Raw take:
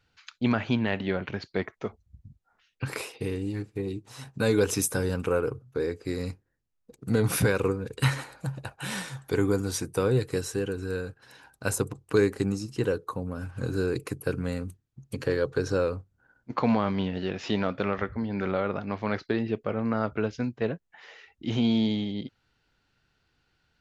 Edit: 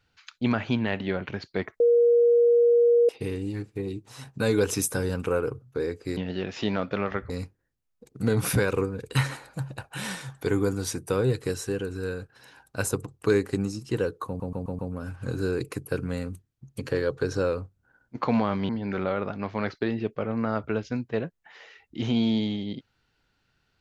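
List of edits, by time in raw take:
0:01.80–0:03.09: beep over 474 Hz −15.5 dBFS
0:13.14: stutter 0.13 s, 5 plays
0:17.04–0:18.17: move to 0:06.17

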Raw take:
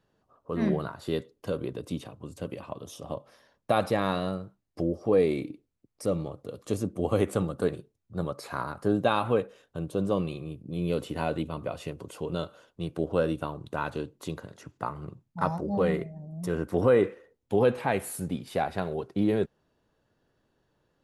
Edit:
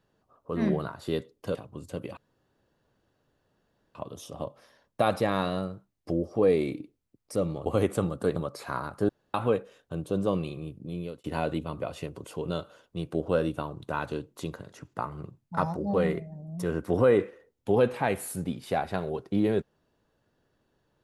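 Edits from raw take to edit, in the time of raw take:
0:01.55–0:02.03: remove
0:02.65: splice in room tone 1.78 s
0:06.36–0:07.04: remove
0:07.74–0:08.20: remove
0:08.93–0:09.18: fill with room tone
0:10.62–0:11.08: fade out linear

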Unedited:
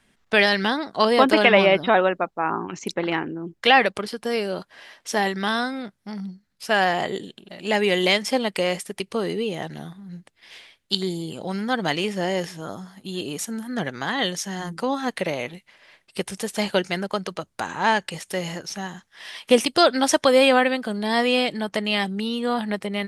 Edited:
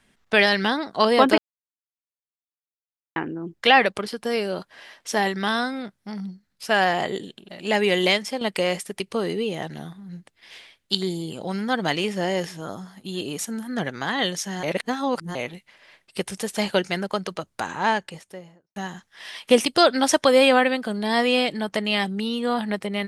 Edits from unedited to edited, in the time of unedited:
0:01.38–0:03.16: silence
0:08.08–0:08.41: fade out, to −9.5 dB
0:14.63–0:15.35: reverse
0:17.65–0:18.76: fade out and dull

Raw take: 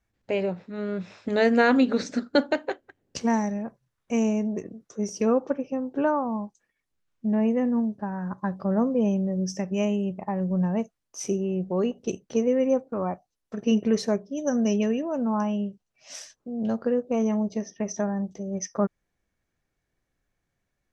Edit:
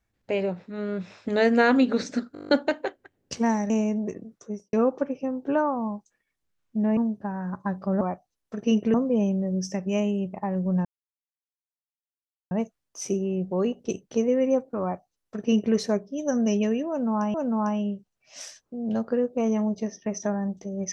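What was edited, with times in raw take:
0:02.33: stutter 0.02 s, 9 plays
0:03.54–0:04.19: remove
0:04.85–0:05.22: fade out and dull
0:07.46–0:07.75: remove
0:10.70: splice in silence 1.66 s
0:13.01–0:13.94: duplicate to 0:08.79
0:15.08–0:15.53: repeat, 2 plays

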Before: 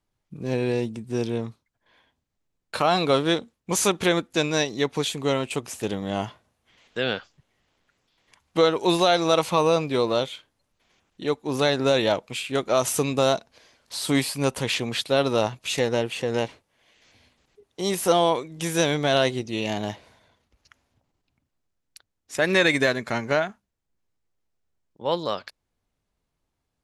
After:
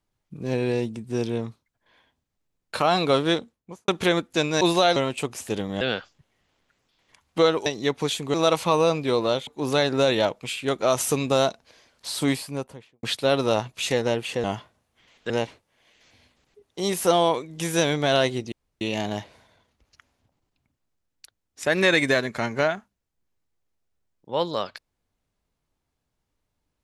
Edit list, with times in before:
0:03.37–0:03.88: fade out and dull
0:04.61–0:05.29: swap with 0:08.85–0:09.20
0:06.14–0:07.00: move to 0:16.31
0:10.33–0:11.34: remove
0:13.97–0:14.90: fade out and dull
0:19.53: splice in room tone 0.29 s

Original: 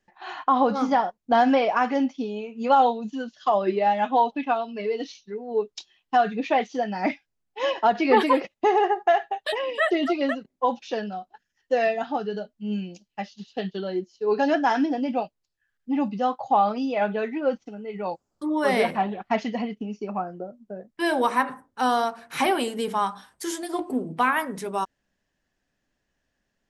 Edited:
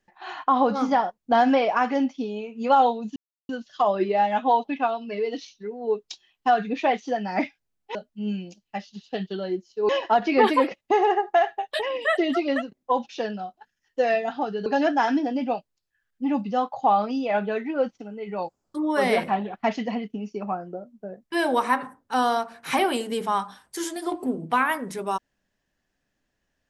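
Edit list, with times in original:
0:03.16: splice in silence 0.33 s
0:12.39–0:14.33: move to 0:07.62

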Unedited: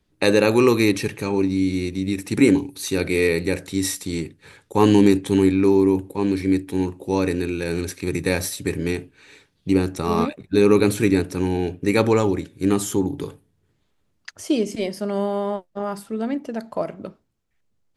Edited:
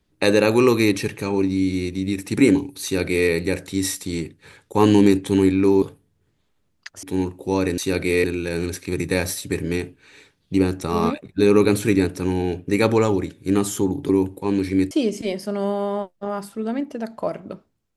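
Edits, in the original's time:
0:02.83–0:03.29: duplicate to 0:07.39
0:05.82–0:06.64: swap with 0:13.24–0:14.45

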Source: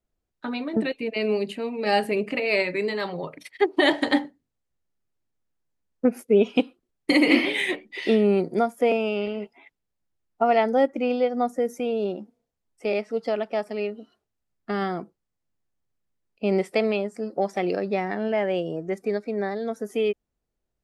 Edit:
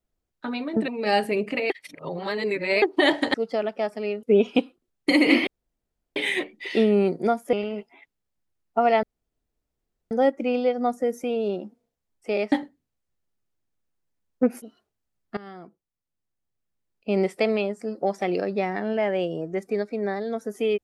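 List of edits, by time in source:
0:00.88–0:01.68: remove
0:02.50–0:03.62: reverse
0:04.14–0:06.24: swap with 0:13.08–0:13.97
0:07.48: splice in room tone 0.69 s
0:08.85–0:09.17: remove
0:10.67: splice in room tone 1.08 s
0:14.72–0:16.53: fade in, from −18.5 dB

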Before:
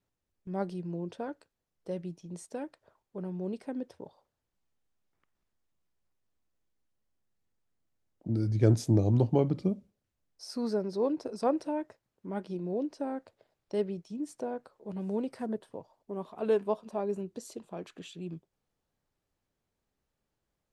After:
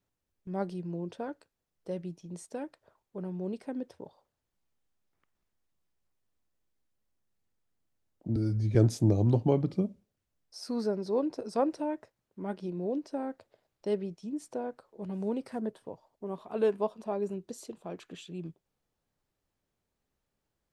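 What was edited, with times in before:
0:08.36–0:08.62: time-stretch 1.5×

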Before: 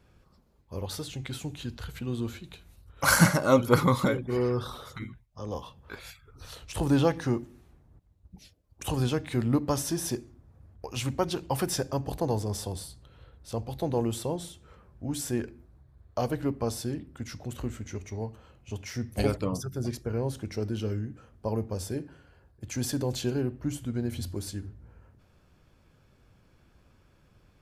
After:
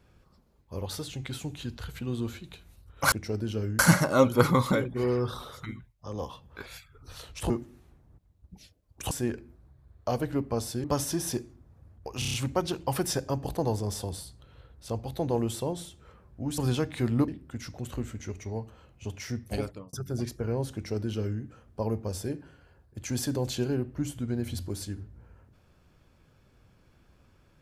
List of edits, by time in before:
0:06.83–0:07.31: remove
0:08.92–0:09.62: swap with 0:15.21–0:16.94
0:10.97: stutter 0.03 s, 6 plays
0:18.95–0:19.59: fade out
0:20.40–0:21.07: duplicate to 0:03.12

